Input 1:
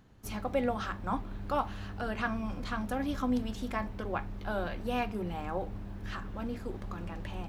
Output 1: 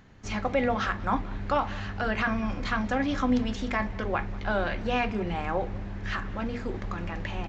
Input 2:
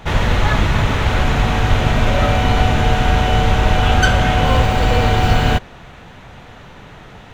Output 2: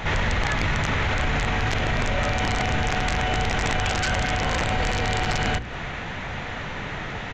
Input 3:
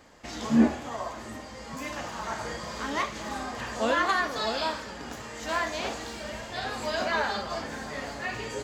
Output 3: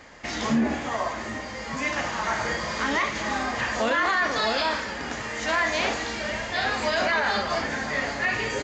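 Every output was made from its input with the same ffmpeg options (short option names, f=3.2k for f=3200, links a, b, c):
-filter_complex "[0:a]bandreject=f=60:t=h:w=6,bandreject=f=120:t=h:w=6,bandreject=f=180:t=h:w=6,bandreject=f=240:t=h:w=6,bandreject=f=300:t=h:w=6,bandreject=f=360:t=h:w=6,bandreject=f=420:t=h:w=6,bandreject=f=480:t=h:w=6,aresample=16000,aeval=exprs='(mod(1.88*val(0)+1,2)-1)/1.88':c=same,aresample=44100,acompressor=threshold=-21dB:ratio=12,equalizer=f=2k:w=2:g=6.5,acontrast=54,alimiter=limit=-15.5dB:level=0:latency=1:release=19,asplit=2[a][b];[b]adelay=192.4,volume=-21dB,highshelf=f=4k:g=-4.33[c];[a][c]amix=inputs=2:normalize=0"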